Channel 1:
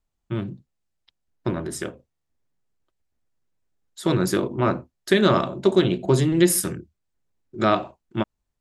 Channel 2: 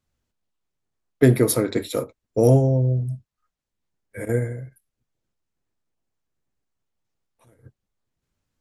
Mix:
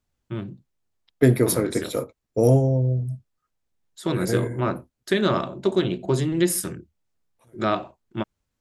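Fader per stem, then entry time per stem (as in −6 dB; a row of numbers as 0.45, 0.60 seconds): −3.5, −1.5 decibels; 0.00, 0.00 seconds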